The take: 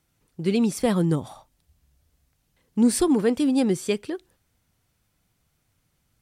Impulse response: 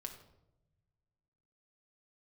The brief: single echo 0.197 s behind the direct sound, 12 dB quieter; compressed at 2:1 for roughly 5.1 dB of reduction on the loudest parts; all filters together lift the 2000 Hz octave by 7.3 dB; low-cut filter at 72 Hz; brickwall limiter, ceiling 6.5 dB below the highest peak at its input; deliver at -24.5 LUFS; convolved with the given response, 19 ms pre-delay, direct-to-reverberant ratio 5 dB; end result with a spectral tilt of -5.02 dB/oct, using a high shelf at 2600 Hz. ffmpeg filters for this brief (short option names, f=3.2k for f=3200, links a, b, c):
-filter_complex "[0:a]highpass=72,equalizer=f=2k:t=o:g=7,highshelf=f=2.6k:g=4,acompressor=threshold=-24dB:ratio=2,alimiter=limit=-19dB:level=0:latency=1,aecho=1:1:197:0.251,asplit=2[a][b];[1:a]atrim=start_sample=2205,adelay=19[c];[b][c]afir=irnorm=-1:irlink=0,volume=-1.5dB[d];[a][d]amix=inputs=2:normalize=0,volume=2.5dB"